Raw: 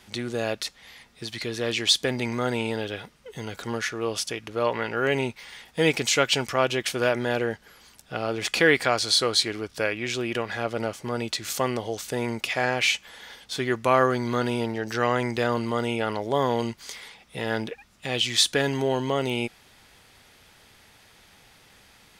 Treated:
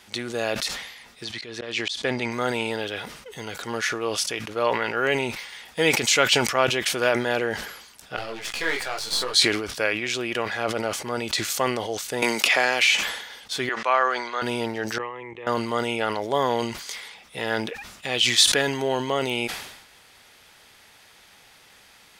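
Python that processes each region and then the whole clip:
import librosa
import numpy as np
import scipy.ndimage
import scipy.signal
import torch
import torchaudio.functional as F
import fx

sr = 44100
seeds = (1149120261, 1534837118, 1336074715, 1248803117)

y = fx.chain(x, sr, fx.auto_swell(attack_ms=180.0),
    fx.air_absorb(metres=58.0), at=(1.24, 2.31))
y = fx.chain(y, sr, fx.halfwave_gain(db=-12.0),
    fx.detune_double(cents=25), at=(8.16, 9.34))
y = fx.chain(y, sr, fx.highpass(hz=210.0, slope=12),
    fx.band_squash(depth_pct=100), at=(12.22, 13.01))
y = fx.chain(y, sr, fx.highpass(hz=680.0, slope=12),
    fx.air_absorb(metres=110.0), at=(13.69, 14.42))
y = fx.chain(y, sr, fx.lowpass(hz=2700.0, slope=12),
    fx.fixed_phaser(hz=990.0, stages=8),
    fx.level_steps(step_db=19), at=(14.98, 15.47))
y = fx.low_shelf(y, sr, hz=310.0, db=-9.5)
y = fx.sustainer(y, sr, db_per_s=62.0)
y = F.gain(torch.from_numpy(y), 3.0).numpy()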